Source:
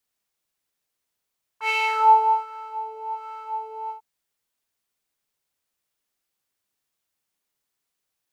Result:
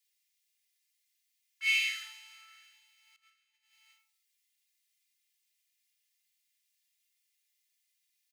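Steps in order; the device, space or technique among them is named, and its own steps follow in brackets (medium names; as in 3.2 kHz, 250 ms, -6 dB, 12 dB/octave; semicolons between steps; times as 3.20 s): microphone above a desk (comb 2.9 ms, depth 79%; reverberation RT60 0.55 s, pre-delay 8 ms, DRR 3 dB); 3.16–3.73 s: gate -37 dBFS, range -17 dB; elliptic high-pass 2 kHz, stop band 80 dB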